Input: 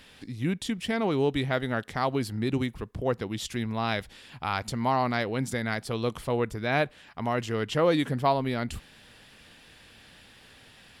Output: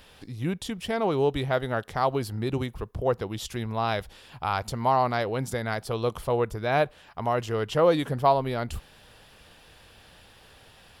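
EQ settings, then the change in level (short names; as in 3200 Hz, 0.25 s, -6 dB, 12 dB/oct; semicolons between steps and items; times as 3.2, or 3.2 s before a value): graphic EQ 125/250/2000/4000/8000 Hz -3/-9/-8/-4/-6 dB; +5.5 dB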